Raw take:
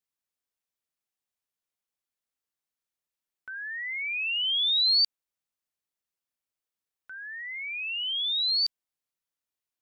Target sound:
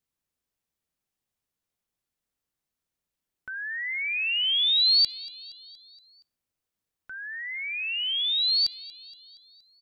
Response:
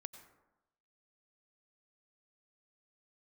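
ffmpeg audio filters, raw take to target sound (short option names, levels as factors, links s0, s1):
-filter_complex "[0:a]lowshelf=f=350:g=11,aecho=1:1:235|470|705|940|1175:0.1|0.059|0.0348|0.0205|0.0121,asplit=2[s0][s1];[1:a]atrim=start_sample=2205,asetrate=70560,aresample=44100[s2];[s1][s2]afir=irnorm=-1:irlink=0,volume=0.841[s3];[s0][s3]amix=inputs=2:normalize=0"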